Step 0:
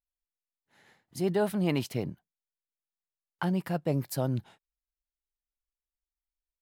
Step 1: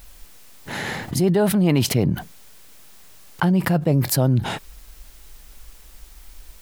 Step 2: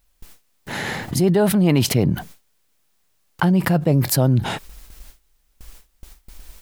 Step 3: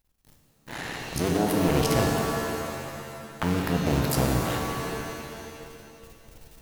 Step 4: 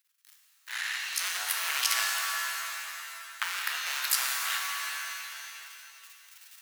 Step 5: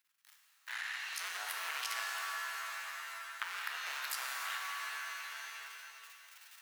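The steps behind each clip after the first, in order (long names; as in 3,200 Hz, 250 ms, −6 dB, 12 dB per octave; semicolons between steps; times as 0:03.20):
low-shelf EQ 250 Hz +7 dB; envelope flattener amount 70%; level +5.5 dB
noise gate with hold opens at −33 dBFS; level +1.5 dB
sub-harmonics by changed cycles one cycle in 2, muted; reverb with rising layers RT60 2.3 s, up +7 semitones, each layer −2 dB, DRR 2 dB; level −7 dB
high-pass filter 1,400 Hz 24 dB per octave; level +4.5 dB
high-shelf EQ 2,700 Hz −10.5 dB; downward compressor 2 to 1, threshold −46 dBFS, peak gain reduction 9.5 dB; level +3.5 dB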